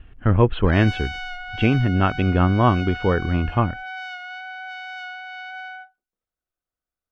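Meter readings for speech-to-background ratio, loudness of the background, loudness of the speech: 12.5 dB, -33.0 LUFS, -20.5 LUFS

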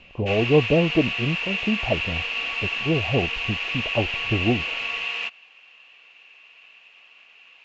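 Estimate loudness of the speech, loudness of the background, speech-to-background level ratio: -25.0 LUFS, -25.5 LUFS, 0.5 dB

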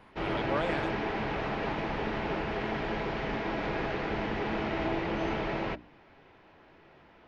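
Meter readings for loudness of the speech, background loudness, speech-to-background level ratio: -36.0 LUFS, -32.5 LUFS, -3.5 dB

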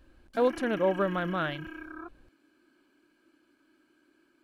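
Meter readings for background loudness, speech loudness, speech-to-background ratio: -42.0 LUFS, -29.5 LUFS, 12.5 dB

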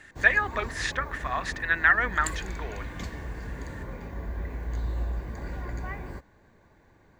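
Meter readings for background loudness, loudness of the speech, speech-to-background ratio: -37.0 LUFS, -25.5 LUFS, 11.5 dB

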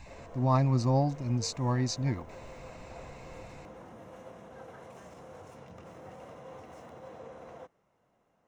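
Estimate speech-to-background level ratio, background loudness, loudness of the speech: 20.0 dB, -49.0 LUFS, -29.0 LUFS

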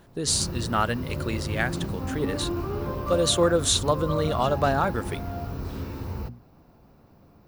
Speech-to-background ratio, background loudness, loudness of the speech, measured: 7.0 dB, -32.5 LUFS, -25.5 LUFS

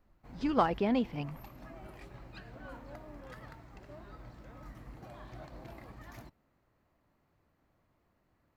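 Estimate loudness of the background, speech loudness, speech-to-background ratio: -50.5 LUFS, -31.5 LUFS, 19.0 dB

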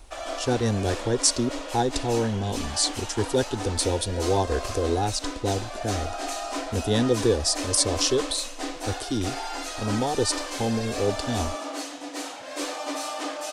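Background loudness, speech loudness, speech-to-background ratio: -33.0 LUFS, -26.0 LUFS, 7.0 dB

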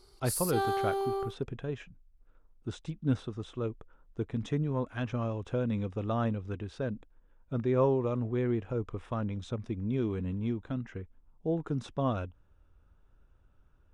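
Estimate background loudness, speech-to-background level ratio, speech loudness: -33.0 LUFS, -1.0 dB, -34.0 LUFS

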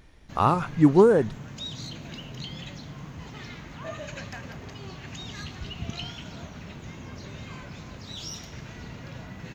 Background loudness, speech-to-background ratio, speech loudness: -39.0 LUFS, 18.5 dB, -20.5 LUFS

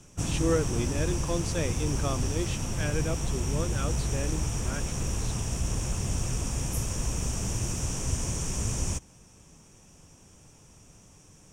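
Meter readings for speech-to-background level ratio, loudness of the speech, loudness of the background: -3.0 dB, -34.0 LUFS, -31.0 LUFS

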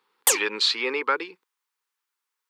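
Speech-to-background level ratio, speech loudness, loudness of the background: -2.5 dB, -25.0 LUFS, -22.5 LUFS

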